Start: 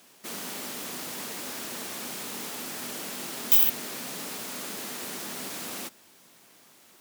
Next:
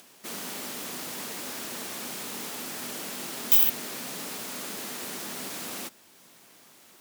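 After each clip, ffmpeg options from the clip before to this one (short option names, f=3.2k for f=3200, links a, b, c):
-af "acompressor=mode=upward:threshold=-50dB:ratio=2.5"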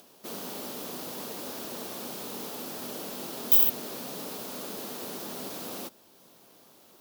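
-af "equalizer=f=500:t=o:w=1:g=4,equalizer=f=2k:t=o:w=1:g=-9,equalizer=f=8k:t=o:w=1:g=-7"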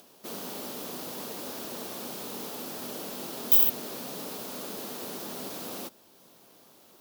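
-af anull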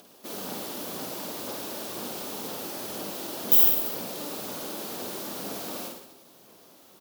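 -af "aphaser=in_gain=1:out_gain=1:delay=3.5:decay=0.31:speed=2:type=sinusoidal,aecho=1:1:50|107.5|173.6|249.7|337.1:0.631|0.398|0.251|0.158|0.1"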